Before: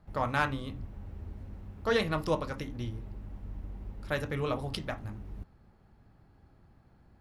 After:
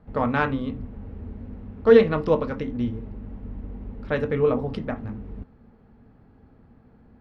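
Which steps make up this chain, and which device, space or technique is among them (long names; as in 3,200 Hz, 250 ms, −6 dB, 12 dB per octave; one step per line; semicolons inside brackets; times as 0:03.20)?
0:04.37–0:04.96: dynamic equaliser 3,600 Hz, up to −7 dB, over −54 dBFS, Q 1
inside a cardboard box (low-pass filter 2,900 Hz 12 dB per octave; hollow resonant body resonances 240/450 Hz, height 12 dB, ringing for 65 ms)
level +4.5 dB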